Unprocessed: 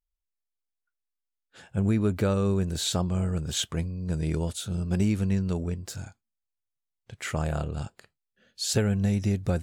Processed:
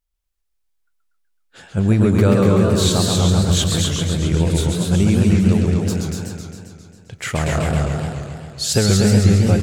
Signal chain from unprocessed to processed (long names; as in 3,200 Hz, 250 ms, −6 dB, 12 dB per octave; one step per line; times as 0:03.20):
single-tap delay 240 ms −4 dB
feedback echo with a swinging delay time 134 ms, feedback 68%, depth 207 cents, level −4 dB
level +7.5 dB